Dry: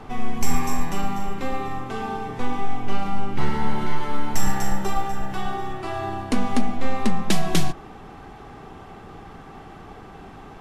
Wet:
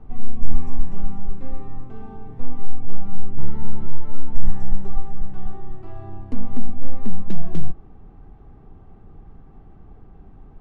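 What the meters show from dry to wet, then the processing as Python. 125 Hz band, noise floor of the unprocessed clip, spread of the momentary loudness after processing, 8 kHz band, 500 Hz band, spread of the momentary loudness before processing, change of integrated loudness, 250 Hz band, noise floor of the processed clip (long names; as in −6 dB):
+0.5 dB, −42 dBFS, 17 LU, below −25 dB, −11.5 dB, 17 LU, −7.5 dB, −6.5 dB, −46 dBFS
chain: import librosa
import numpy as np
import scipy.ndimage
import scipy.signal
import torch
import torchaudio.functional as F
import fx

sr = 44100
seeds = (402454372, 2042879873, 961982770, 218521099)

y = fx.tilt_eq(x, sr, slope=-4.5)
y = y * librosa.db_to_amplitude(-16.5)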